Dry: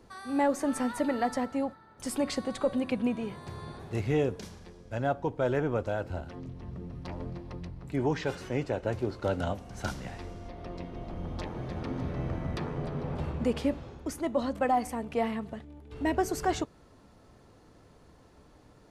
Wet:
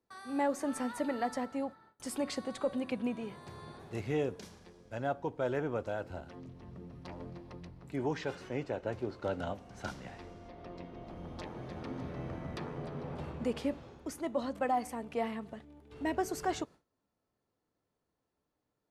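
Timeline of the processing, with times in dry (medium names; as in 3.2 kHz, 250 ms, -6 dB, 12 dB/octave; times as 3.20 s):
8.25–11.07 s: treble shelf 7.7 kHz -9.5 dB
whole clip: bass shelf 90 Hz -11 dB; gate with hold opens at -46 dBFS; trim -4.5 dB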